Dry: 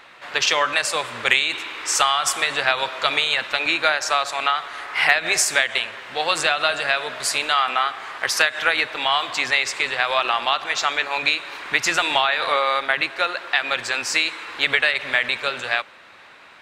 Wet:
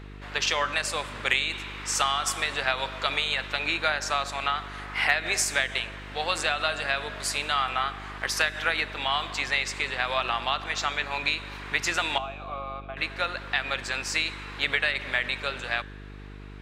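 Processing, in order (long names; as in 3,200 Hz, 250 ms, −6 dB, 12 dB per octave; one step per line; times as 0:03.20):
0:12.18–0:12.97: formant filter a
hum with harmonics 50 Hz, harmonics 9, −36 dBFS −5 dB per octave
tuned comb filter 110 Hz, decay 1.2 s, harmonics all, mix 40%
level −2.5 dB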